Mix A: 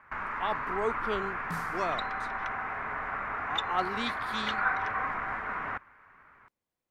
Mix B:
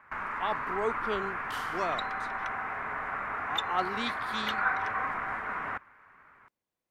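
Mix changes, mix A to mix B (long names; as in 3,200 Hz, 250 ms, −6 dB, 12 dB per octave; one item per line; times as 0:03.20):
first sound: remove low-pass filter 6,900 Hz 12 dB per octave
second sound: add high-pass with resonance 3,000 Hz, resonance Q 9
master: add low-shelf EQ 79 Hz −6 dB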